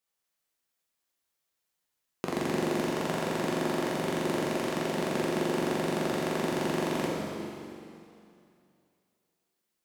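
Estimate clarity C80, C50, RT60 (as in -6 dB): 0.5 dB, -1.5 dB, 2.6 s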